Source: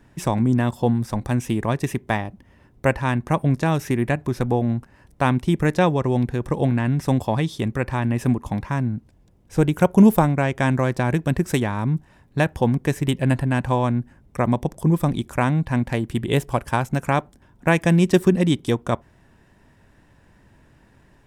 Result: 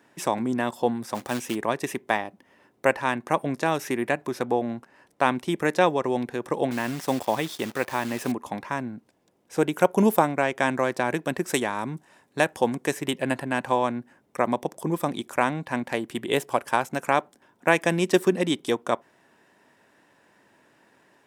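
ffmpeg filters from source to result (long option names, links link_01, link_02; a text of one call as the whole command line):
ffmpeg -i in.wav -filter_complex "[0:a]asplit=3[link_01][link_02][link_03];[link_01]afade=type=out:start_time=1.14:duration=0.02[link_04];[link_02]acrusher=bits=4:mode=log:mix=0:aa=0.000001,afade=type=in:start_time=1.14:duration=0.02,afade=type=out:start_time=1.54:duration=0.02[link_05];[link_03]afade=type=in:start_time=1.54:duration=0.02[link_06];[link_04][link_05][link_06]amix=inputs=3:normalize=0,asettb=1/sr,asplit=3[link_07][link_08][link_09];[link_07]atrim=end=4.394[link_10];[link_08]atrim=start=4.39:end=5.29,asetpts=PTS-STARTPTS,afade=type=in:duration=0.004:curve=qsin,afade=type=out:start_time=0.896:duration=0.004:curve=qsin,highshelf=frequency=9500:gain=-5[link_11];[link_09]atrim=start=5.286[link_12];[link_10][link_11]acrossfade=duration=0.004:curve1=hsin:curve2=qsin[link_13];[link_13][link_12]acrossfade=duration=0.004:curve1=qsin:curve2=hsin,asettb=1/sr,asplit=3[link_14][link_15][link_16];[link_14]atrim=end=6.714[link_17];[link_15]atrim=start=6.71:end=8.32,asetpts=PTS-STARTPTS,afade=type=in:duration=0.004:curve=qsin,afade=type=out:start_time=1.606:duration=0.004:curve=qsin,acrusher=bits=7:dc=4:mix=0:aa=0.000001[link_18];[link_16]atrim=start=8.316[link_19];[link_17][link_18]acrossfade=duration=0.004:curve1=hsin:curve2=qsin[link_20];[link_20][link_19]acrossfade=duration=0.004:curve1=qsin:curve2=hsin,asettb=1/sr,asplit=3[link_21][link_22][link_23];[link_21]atrim=end=11.544[link_24];[link_22]atrim=start=11.54:end=12.93,asetpts=PTS-STARTPTS,afade=type=in:duration=0.004:curve=qsin,afade=type=out:start_time=1.386:duration=0.004:curve=qsin,equalizer=frequency=8200:width_type=o:width=1.2:gain=6[link_25];[link_23]atrim=start=12.926[link_26];[link_24][link_25]acrossfade=duration=0.004:curve1=hsin:curve2=qsin[link_27];[link_27][link_26]acrossfade=duration=0.004:curve1=qsin:curve2=hsin,highpass=340" out.wav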